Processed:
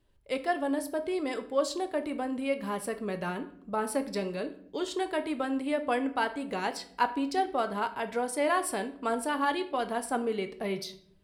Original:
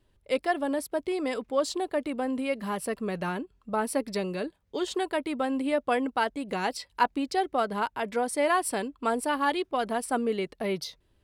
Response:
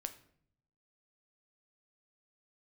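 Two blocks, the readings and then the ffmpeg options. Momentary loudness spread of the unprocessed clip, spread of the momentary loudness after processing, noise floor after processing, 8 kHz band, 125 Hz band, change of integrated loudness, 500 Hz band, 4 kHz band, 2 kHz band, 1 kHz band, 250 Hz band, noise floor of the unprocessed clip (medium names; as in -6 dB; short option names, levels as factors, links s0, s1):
6 LU, 6 LU, -57 dBFS, -2.5 dB, -3.0 dB, -2.0 dB, -2.0 dB, -2.5 dB, -2.0 dB, -2.0 dB, -2.0 dB, -68 dBFS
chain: -filter_complex "[1:a]atrim=start_sample=2205[s0];[0:a][s0]afir=irnorm=-1:irlink=0"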